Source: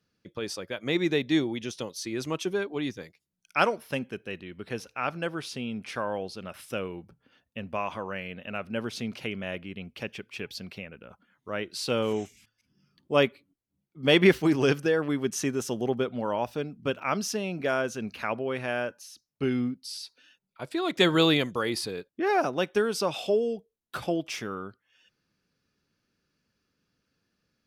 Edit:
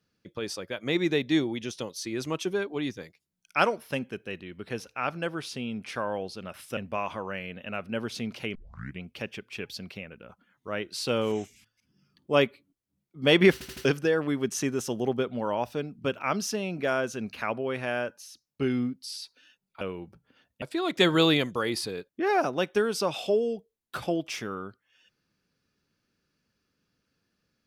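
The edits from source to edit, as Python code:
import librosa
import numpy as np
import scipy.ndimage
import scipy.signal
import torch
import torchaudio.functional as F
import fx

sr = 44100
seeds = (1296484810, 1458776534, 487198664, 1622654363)

y = fx.edit(x, sr, fx.move(start_s=6.77, length_s=0.81, to_s=20.62),
    fx.tape_start(start_s=9.36, length_s=0.46),
    fx.stutter_over(start_s=14.34, slice_s=0.08, count=4), tone=tone)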